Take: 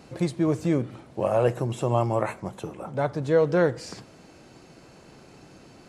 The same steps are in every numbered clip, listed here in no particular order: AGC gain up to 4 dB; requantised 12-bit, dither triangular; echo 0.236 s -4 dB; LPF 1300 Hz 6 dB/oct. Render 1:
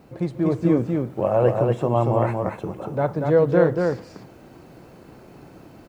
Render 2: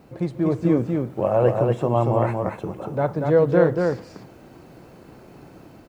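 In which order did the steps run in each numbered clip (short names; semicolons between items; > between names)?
LPF > requantised > echo > AGC; LPF > requantised > AGC > echo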